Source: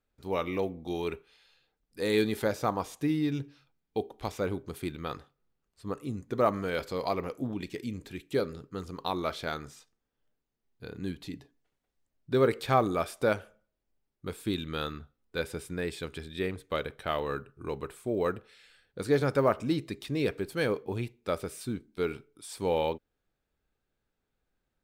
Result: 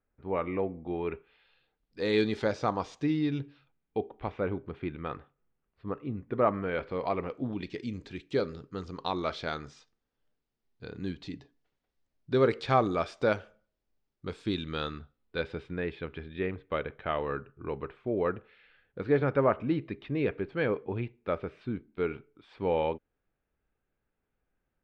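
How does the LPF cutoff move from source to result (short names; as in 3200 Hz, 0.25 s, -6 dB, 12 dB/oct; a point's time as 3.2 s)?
LPF 24 dB/oct
0.96 s 2200 Hz
2.18 s 5700 Hz
3.02 s 5700 Hz
4.02 s 2700 Hz
6.9 s 2700 Hz
7.89 s 5800 Hz
14.86 s 5800 Hz
16 s 2800 Hz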